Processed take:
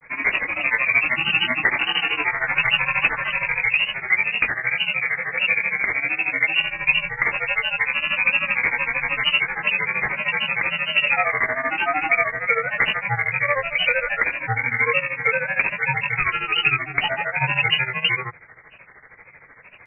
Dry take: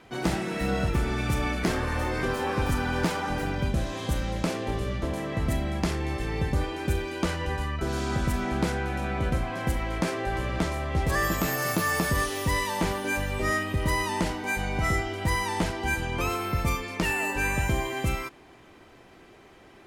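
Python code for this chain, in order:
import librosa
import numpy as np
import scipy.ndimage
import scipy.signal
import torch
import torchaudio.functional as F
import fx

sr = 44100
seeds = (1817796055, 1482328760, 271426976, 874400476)

y = fx.freq_invert(x, sr, carrier_hz=2500)
y = fx.granulator(y, sr, seeds[0], grain_ms=104.0, per_s=13.0, spray_ms=18.0, spread_st=3)
y = fx.hum_notches(y, sr, base_hz=50, count=3)
y = y * 10.0 ** (8.0 / 20.0)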